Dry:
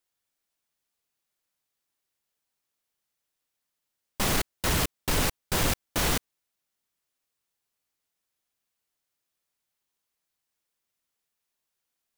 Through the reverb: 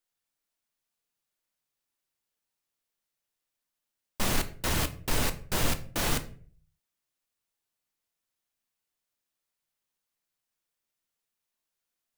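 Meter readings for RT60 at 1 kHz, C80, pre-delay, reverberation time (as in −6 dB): 0.40 s, 19.5 dB, 3 ms, 0.45 s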